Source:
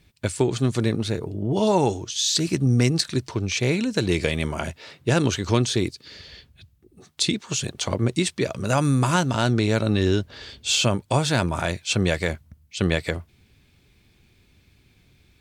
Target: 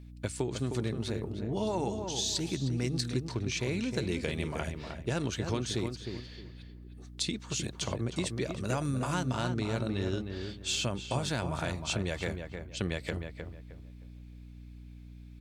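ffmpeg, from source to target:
ffmpeg -i in.wav -filter_complex "[0:a]acompressor=threshold=-22dB:ratio=3,asplit=2[link_01][link_02];[link_02]adelay=310,lowpass=frequency=2000:poles=1,volume=-6dB,asplit=2[link_03][link_04];[link_04]adelay=310,lowpass=frequency=2000:poles=1,volume=0.28,asplit=2[link_05][link_06];[link_06]adelay=310,lowpass=frequency=2000:poles=1,volume=0.28,asplit=2[link_07][link_08];[link_08]adelay=310,lowpass=frequency=2000:poles=1,volume=0.28[link_09];[link_01][link_03][link_05][link_07][link_09]amix=inputs=5:normalize=0,aeval=exprs='val(0)+0.0112*(sin(2*PI*60*n/s)+sin(2*PI*2*60*n/s)/2+sin(2*PI*3*60*n/s)/3+sin(2*PI*4*60*n/s)/4+sin(2*PI*5*60*n/s)/5)':channel_layout=same,volume=-7.5dB" out.wav

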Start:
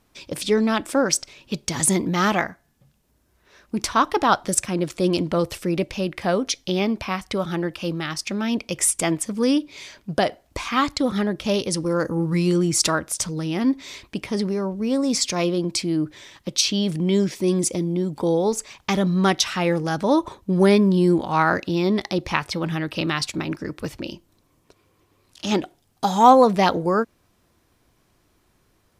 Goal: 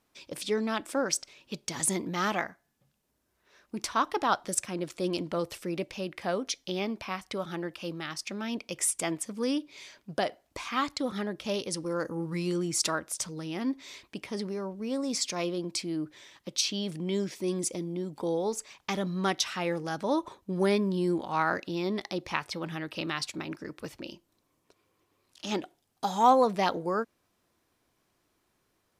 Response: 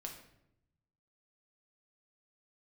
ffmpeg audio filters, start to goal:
-af "lowshelf=frequency=140:gain=-11,volume=-8dB"

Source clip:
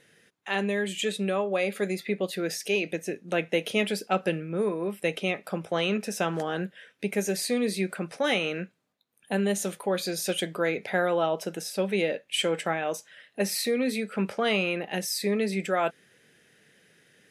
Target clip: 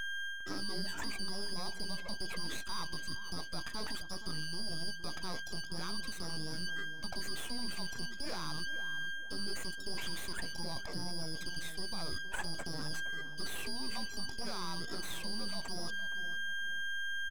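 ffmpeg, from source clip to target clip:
ffmpeg -i in.wav -filter_complex "[0:a]afftfilt=real='real(if(lt(b,272),68*(eq(floor(b/68),0)*1+eq(floor(b/68),1)*2+eq(floor(b/68),2)*3+eq(floor(b/68),3)*0)+mod(b,68),b),0)':imag='imag(if(lt(b,272),68*(eq(floor(b/68),0)*1+eq(floor(b/68),1)*2+eq(floor(b/68),2)*3+eq(floor(b/68),3)*0)+mod(b,68),b),0)':win_size=2048:overlap=0.75,highpass=150,afftdn=noise_reduction=23:noise_floor=-38,aeval=exprs='val(0)+0.0141*sin(2*PI*1600*n/s)':channel_layout=same,equalizer=frequency=1700:width_type=o:width=2.5:gain=-7.5,areverse,acompressor=threshold=-39dB:ratio=6,areverse,alimiter=level_in=11dB:limit=-24dB:level=0:latency=1:release=63,volume=-11dB,aeval=exprs='max(val(0),0)':channel_layout=same,acrossover=split=3100[link_01][link_02];[link_02]acompressor=threshold=-56dB:ratio=4:attack=1:release=60[link_03];[link_01][link_03]amix=inputs=2:normalize=0,asplit=2[link_04][link_05];[link_05]adelay=465,lowpass=frequency=1300:poles=1,volume=-11dB,asplit=2[link_06][link_07];[link_07]adelay=465,lowpass=frequency=1300:poles=1,volume=0.38,asplit=2[link_08][link_09];[link_09]adelay=465,lowpass=frequency=1300:poles=1,volume=0.38,asplit=2[link_10][link_11];[link_11]adelay=465,lowpass=frequency=1300:poles=1,volume=0.38[link_12];[link_04][link_06][link_08][link_10][link_12]amix=inputs=5:normalize=0,volume=12.5dB" out.wav

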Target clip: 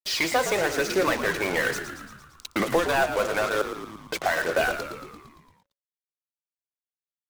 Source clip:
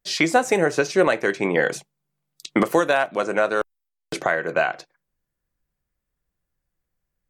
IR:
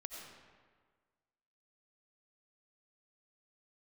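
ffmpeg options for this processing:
-filter_complex "[0:a]asplit=2[link_01][link_02];[link_02]highpass=frequency=720:poles=1,volume=17dB,asoftclip=type=tanh:threshold=-6.5dB[link_03];[link_01][link_03]amix=inputs=2:normalize=0,lowpass=frequency=4200:poles=1,volume=-6dB,aphaser=in_gain=1:out_gain=1:delay=2.1:decay=0.42:speed=1.1:type=triangular,acrusher=bits=3:mix=0:aa=0.5,asplit=2[link_04][link_05];[link_05]asplit=8[link_06][link_07][link_08][link_09][link_10][link_11][link_12][link_13];[link_06]adelay=114,afreqshift=-70,volume=-9.5dB[link_14];[link_07]adelay=228,afreqshift=-140,volume=-13.7dB[link_15];[link_08]adelay=342,afreqshift=-210,volume=-17.8dB[link_16];[link_09]adelay=456,afreqshift=-280,volume=-22dB[link_17];[link_10]adelay=570,afreqshift=-350,volume=-26.1dB[link_18];[link_11]adelay=684,afreqshift=-420,volume=-30.3dB[link_19];[link_12]adelay=798,afreqshift=-490,volume=-34.4dB[link_20];[link_13]adelay=912,afreqshift=-560,volume=-38.6dB[link_21];[link_14][link_15][link_16][link_17][link_18][link_19][link_20][link_21]amix=inputs=8:normalize=0[link_22];[link_04][link_22]amix=inputs=2:normalize=0,volume=-8.5dB"

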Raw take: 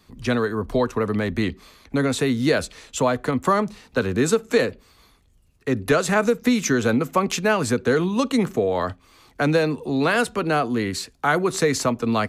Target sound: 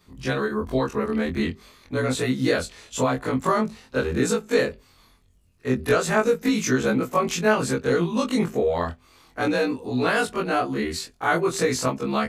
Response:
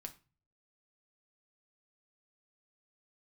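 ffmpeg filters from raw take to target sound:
-af "afftfilt=real='re':imag='-im':win_size=2048:overlap=0.75,volume=2.5dB"

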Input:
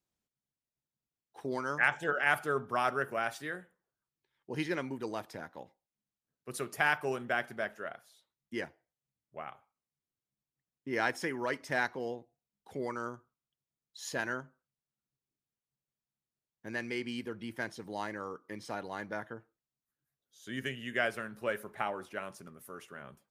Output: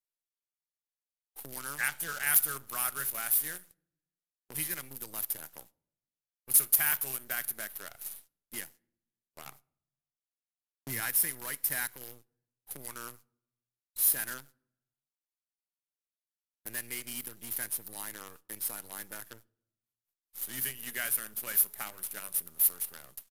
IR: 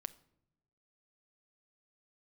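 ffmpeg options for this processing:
-filter_complex "[0:a]asettb=1/sr,asplit=3[link_01][link_02][link_03];[link_01]atrim=end=9.454[link_04];[link_02]atrim=start=9.45:end=11,asetpts=PTS-STARTPTS,afade=type=in:duration=0.004:curve=qsin,afade=type=out:start_time=1.546:duration=0.004:curve=qsin,bass=frequency=250:gain=13,treble=frequency=4000:gain=-1[link_05];[link_03]atrim=start=10.996[link_06];[link_04][link_05]acrossfade=duration=0.004:curve1=hsin:curve2=qsin[link_07];[link_07][link_06]acrossfade=duration=0.004:curve1=qsin:curve2=hsin,acrossover=split=200|1100[link_08][link_09][link_10];[link_09]acompressor=threshold=-45dB:ratio=16[link_11];[link_10]aexciter=amount=14.4:drive=9.6:freq=10000[link_12];[link_08][link_11][link_12]amix=inputs=3:normalize=0,acrusher=bits=7:dc=4:mix=0:aa=0.000001,aemphasis=mode=production:type=cd,agate=range=-31dB:threshold=-50dB:ratio=16:detection=peak,aresample=32000,aresample=44100,volume=13dB,asoftclip=hard,volume=-13dB,asplit=2[link_13][link_14];[1:a]atrim=start_sample=2205[link_15];[link_14][link_15]afir=irnorm=-1:irlink=0,volume=-2dB[link_16];[link_13][link_16]amix=inputs=2:normalize=0,volume=-7.5dB"

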